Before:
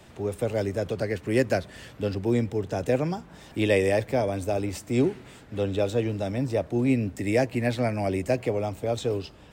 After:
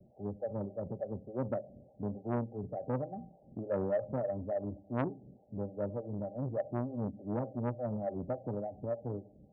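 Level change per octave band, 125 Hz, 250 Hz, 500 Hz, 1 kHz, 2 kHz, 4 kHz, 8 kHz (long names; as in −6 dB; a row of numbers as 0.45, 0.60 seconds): −10.0 dB, −11.0 dB, −10.5 dB, −9.0 dB, −21.0 dB, below −30 dB, below −35 dB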